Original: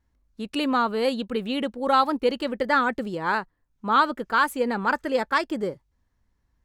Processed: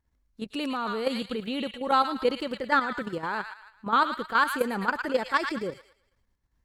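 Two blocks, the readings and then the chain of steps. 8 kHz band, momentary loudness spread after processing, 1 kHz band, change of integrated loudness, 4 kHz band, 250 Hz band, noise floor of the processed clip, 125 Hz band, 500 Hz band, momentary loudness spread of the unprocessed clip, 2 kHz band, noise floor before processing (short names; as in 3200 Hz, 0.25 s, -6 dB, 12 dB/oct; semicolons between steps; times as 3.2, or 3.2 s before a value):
-2.5 dB, 10 LU, -3.0 dB, -3.0 dB, -2.5 dB, -4.5 dB, -73 dBFS, -3.0 dB, -4.0 dB, 8 LU, -2.5 dB, -72 dBFS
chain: thin delay 0.111 s, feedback 37%, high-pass 1500 Hz, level -4 dB; level quantiser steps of 10 dB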